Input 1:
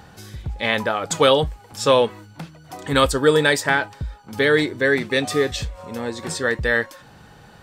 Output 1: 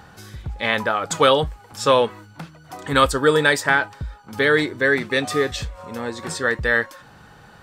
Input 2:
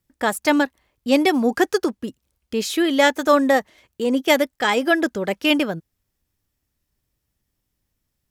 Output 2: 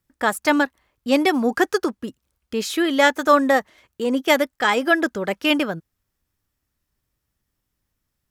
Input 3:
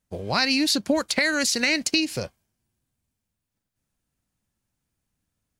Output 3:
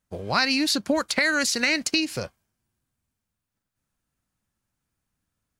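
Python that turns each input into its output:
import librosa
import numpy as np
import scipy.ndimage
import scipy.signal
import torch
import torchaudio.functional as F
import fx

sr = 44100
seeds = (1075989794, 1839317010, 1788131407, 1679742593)

y = fx.peak_eq(x, sr, hz=1300.0, db=5.0, octaves=0.97)
y = y * librosa.db_to_amplitude(-1.5)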